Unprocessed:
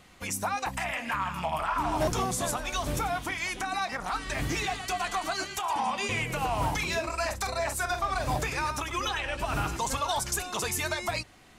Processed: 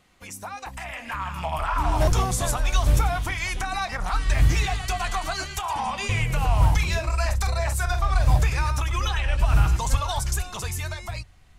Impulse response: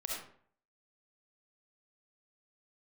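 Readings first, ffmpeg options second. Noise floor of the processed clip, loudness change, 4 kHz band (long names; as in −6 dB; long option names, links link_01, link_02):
−49 dBFS, +5.5 dB, +2.0 dB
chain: -af "asubboost=boost=9.5:cutoff=91,dynaudnorm=framelen=120:gausssize=21:maxgain=11.5dB,volume=-6dB"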